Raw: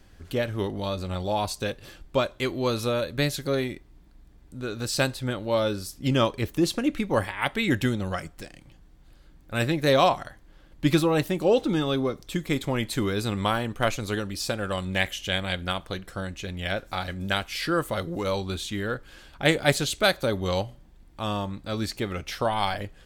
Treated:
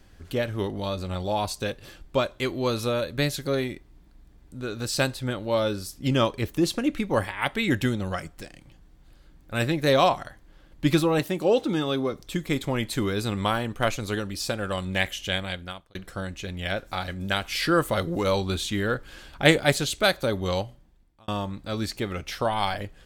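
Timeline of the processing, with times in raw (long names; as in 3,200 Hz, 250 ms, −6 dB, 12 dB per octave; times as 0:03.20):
0:11.19–0:12.12: high-pass filter 130 Hz 6 dB per octave
0:15.31–0:15.95: fade out
0:17.44–0:19.60: clip gain +3.5 dB
0:20.52–0:21.28: fade out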